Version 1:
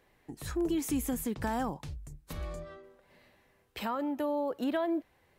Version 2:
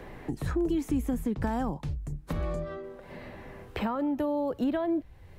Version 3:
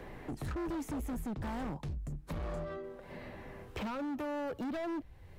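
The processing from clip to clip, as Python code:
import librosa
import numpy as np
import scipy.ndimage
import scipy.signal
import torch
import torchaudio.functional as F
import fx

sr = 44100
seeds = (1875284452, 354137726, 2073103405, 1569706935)

y1 = fx.tilt_eq(x, sr, slope=-2.0)
y1 = fx.band_squash(y1, sr, depth_pct=70)
y2 = np.clip(y1, -10.0 ** (-32.0 / 20.0), 10.0 ** (-32.0 / 20.0))
y2 = F.gain(torch.from_numpy(y2), -3.0).numpy()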